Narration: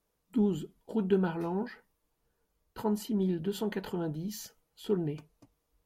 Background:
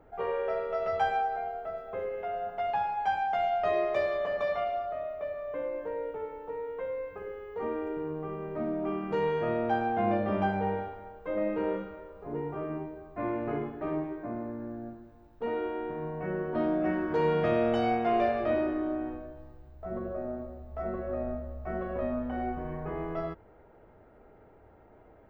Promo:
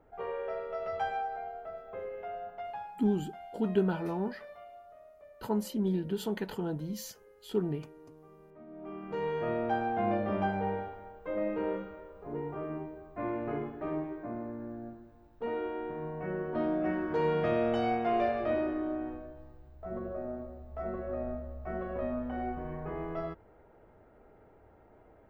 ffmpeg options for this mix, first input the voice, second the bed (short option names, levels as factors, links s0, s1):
-filter_complex "[0:a]adelay=2650,volume=0.944[s0];[1:a]volume=3.55,afade=t=out:st=2.31:d=0.76:silence=0.211349,afade=t=in:st=8.67:d=0.82:silence=0.149624[s1];[s0][s1]amix=inputs=2:normalize=0"